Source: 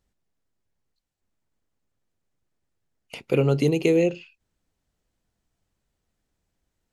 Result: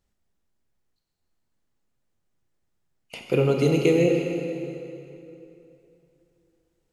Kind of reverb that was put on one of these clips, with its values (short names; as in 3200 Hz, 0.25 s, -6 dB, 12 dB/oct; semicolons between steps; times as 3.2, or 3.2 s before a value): plate-style reverb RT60 3 s, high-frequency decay 0.8×, DRR 1 dB; gain -1 dB